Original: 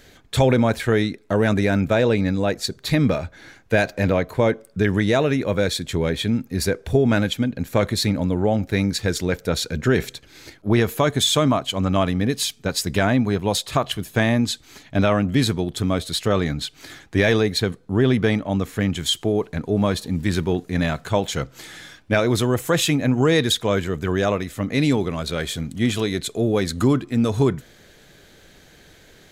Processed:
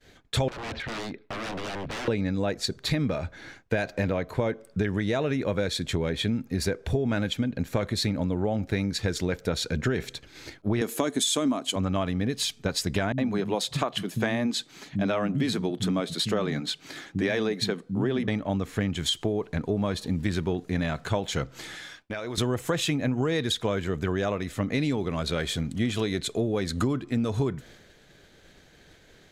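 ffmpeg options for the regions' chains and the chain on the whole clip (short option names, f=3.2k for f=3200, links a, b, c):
-filter_complex "[0:a]asettb=1/sr,asplit=3[a][b][c];[a]atrim=end=0.484[d];[b]atrim=start=0.48:end=2.08,asetpts=PTS-STARTPTS,afade=t=in:d=0.004:c=qsin,afade=t=out:st=1.596:d=0.004:c=qsin,lowpass=f=4.1k:w=0.5412,lowpass=f=4.1k:w=1.3066,aeval=exprs='0.0708*(abs(mod(val(0)/0.0708+3,4)-2)-1)':c=same,acompressor=threshold=-31dB:ratio=6:attack=3.2:release=140:knee=1:detection=peak[e];[c]atrim=start=2.076[f];[d][e]acrossfade=d=0.004:c1=hsin:c2=qsin[g];[g][f]acrossfade=d=0.004:c1=qsin:c2=hsin,asettb=1/sr,asplit=3[h][i][j];[h]atrim=end=10.814[k];[i]atrim=start=10.81:end=11.76,asetpts=PTS-STARTPTS,afade=t=in:d=0.004:c=qsin,afade=t=out:st=0.946:d=0.004:c=qsin,highpass=f=260:t=q:w=2.7,equalizer=f=9.3k:w=0.65:g=13[l];[j]atrim=start=11.756[m];[k][l]acrossfade=d=0.004:c1=hsin:c2=qsin[n];[n][m]acrossfade=d=0.004:c1=qsin:c2=hsin,asettb=1/sr,asplit=3[o][p][q];[o]atrim=end=13.124[r];[p]atrim=start=13.12:end=18.28,asetpts=PTS-STARTPTS,afade=t=in:d=0.004:c=qsin,afade=t=out:st=5.156:d=0.004:c=qsin,lowshelf=f=110:t=q:w=1.5:g=-14,acrossover=split=200[s][t];[t]adelay=60[u];[s][u]amix=inputs=2:normalize=0,atrim=end_sample=227556[v];[q]atrim=start=18.276[w];[r][v]acrossfade=d=0.004:c1=hsin:c2=qsin[x];[x][w]acrossfade=d=0.004:c1=qsin:c2=hsin,asettb=1/sr,asplit=3[y][z][aa];[y]atrim=end=21.754[ab];[z]atrim=start=21.75:end=22.38,asetpts=PTS-STARTPTS,afade=t=in:d=0.004:c=qsin,afade=t=out:st=0.626:d=0.004:c=qsin,lowshelf=f=390:g=-9,acompressor=threshold=-30dB:ratio=5:attack=3.2:release=140:knee=1:detection=peak[ac];[aa]atrim=start=22.376[ad];[ab][ac]acrossfade=d=0.004:c1=hsin:c2=qsin[ae];[ae][ad]acrossfade=d=0.004:c1=qsin:c2=hsin,agate=range=-33dB:threshold=-44dB:ratio=3:detection=peak,highshelf=f=11k:g=-12,acompressor=threshold=-23dB:ratio=6"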